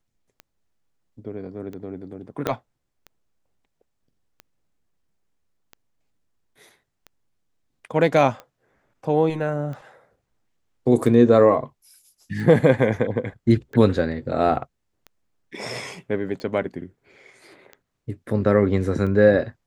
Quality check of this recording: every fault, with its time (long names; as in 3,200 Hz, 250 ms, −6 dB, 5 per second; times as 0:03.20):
scratch tick 45 rpm −24 dBFS
0:02.47: click −10 dBFS